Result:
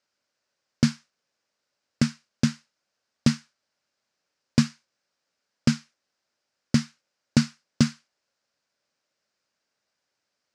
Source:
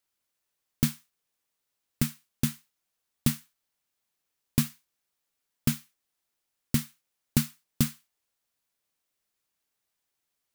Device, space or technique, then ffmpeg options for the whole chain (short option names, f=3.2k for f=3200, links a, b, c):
car door speaker: -af "highpass=94,equalizer=f=230:t=q:w=4:g=3,equalizer=f=570:t=q:w=4:g=8,equalizer=f=1.5k:t=q:w=4:g=5,equalizer=f=3.4k:t=q:w=4:g=-4,equalizer=f=5k:t=q:w=4:g=5,lowpass=f=6.6k:w=0.5412,lowpass=f=6.6k:w=1.3066,volume=4.5dB"